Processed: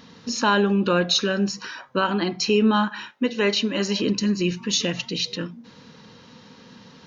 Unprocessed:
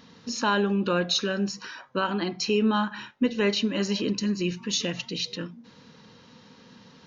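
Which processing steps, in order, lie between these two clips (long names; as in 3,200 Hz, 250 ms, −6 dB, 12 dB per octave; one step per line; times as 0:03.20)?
0:02.88–0:03.99: high-pass filter 440 Hz → 180 Hz 6 dB per octave
level +4.5 dB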